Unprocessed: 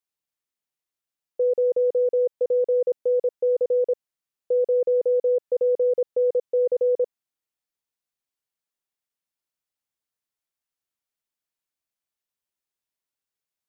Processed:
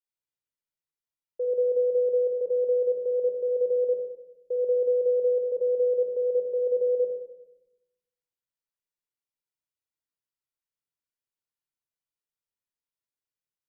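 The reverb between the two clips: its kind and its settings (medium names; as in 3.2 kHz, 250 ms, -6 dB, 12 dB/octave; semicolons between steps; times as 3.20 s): simulated room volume 3000 m³, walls furnished, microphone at 4.7 m; trim -12 dB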